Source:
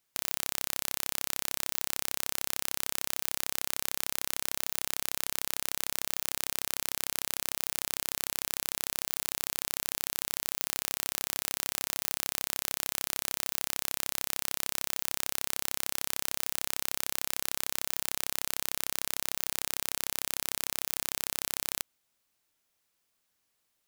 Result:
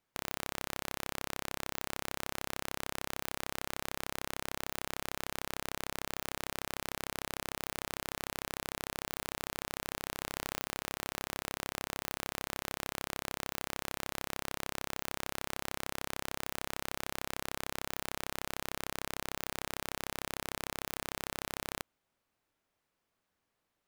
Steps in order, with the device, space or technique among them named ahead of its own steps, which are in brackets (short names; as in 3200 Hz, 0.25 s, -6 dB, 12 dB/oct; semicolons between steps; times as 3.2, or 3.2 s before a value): through cloth (high shelf 2900 Hz -16 dB); gain +3.5 dB